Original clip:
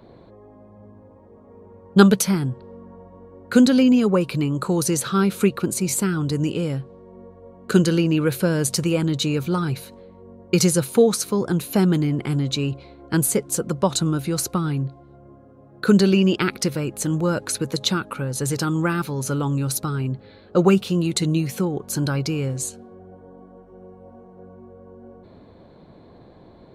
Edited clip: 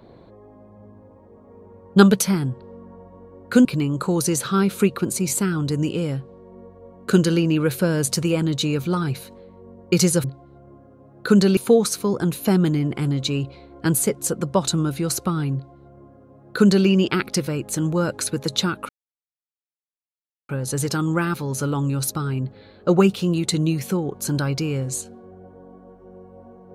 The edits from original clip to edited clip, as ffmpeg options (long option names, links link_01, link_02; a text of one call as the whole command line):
ffmpeg -i in.wav -filter_complex "[0:a]asplit=5[link_01][link_02][link_03][link_04][link_05];[link_01]atrim=end=3.652[link_06];[link_02]atrim=start=4.258:end=10.852[link_07];[link_03]atrim=start=14.818:end=16.152[link_08];[link_04]atrim=start=10.848:end=18.17,asetpts=PTS-STARTPTS,afade=type=out:start_time=7.318:duration=0.004:curve=hsin,apad=pad_dur=1.6[link_09];[link_05]atrim=start=18.17,asetpts=PTS-STARTPTS,afade=type=in:duration=0.004:curve=hsin[link_10];[link_06][link_07]acrossfade=duration=0.004:curve1=hsin:curve2=hsin[link_11];[link_11][link_08]acrossfade=duration=0.004:curve1=hsin:curve2=hsin[link_12];[link_09][link_10]concat=n=2:v=0:a=1[link_13];[link_12][link_13]acrossfade=duration=0.004:curve1=hsin:curve2=hsin" out.wav